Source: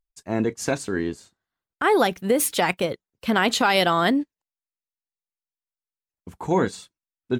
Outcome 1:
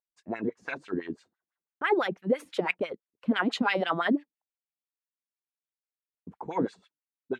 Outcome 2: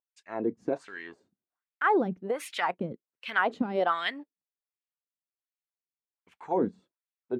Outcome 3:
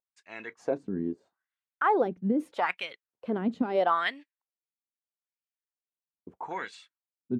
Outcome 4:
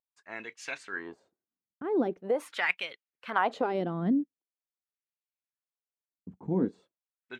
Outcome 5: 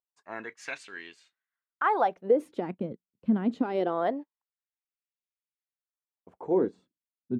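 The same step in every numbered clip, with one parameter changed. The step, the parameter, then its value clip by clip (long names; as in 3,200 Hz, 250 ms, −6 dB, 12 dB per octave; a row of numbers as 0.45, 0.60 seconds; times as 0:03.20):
LFO wah, speed: 6, 1.3, 0.78, 0.43, 0.24 Hertz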